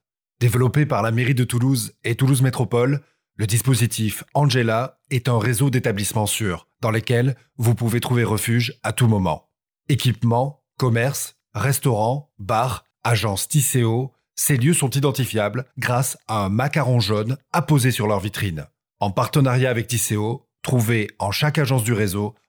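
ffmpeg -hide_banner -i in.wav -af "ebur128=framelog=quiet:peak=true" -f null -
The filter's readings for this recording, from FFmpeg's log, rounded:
Integrated loudness:
  I:         -20.7 LUFS
  Threshold: -30.8 LUFS
Loudness range:
  LRA:         1.4 LU
  Threshold: -40.9 LUFS
  LRA low:   -21.7 LUFS
  LRA high:  -20.2 LUFS
True peak:
  Peak:       -6.8 dBFS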